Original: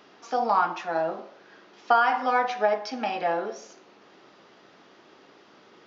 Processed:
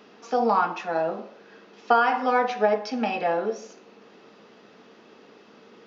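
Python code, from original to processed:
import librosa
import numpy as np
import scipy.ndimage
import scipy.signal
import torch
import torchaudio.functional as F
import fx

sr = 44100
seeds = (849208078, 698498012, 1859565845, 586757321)

y = fx.small_body(x, sr, hz=(220.0, 450.0, 2600.0), ring_ms=55, db=10)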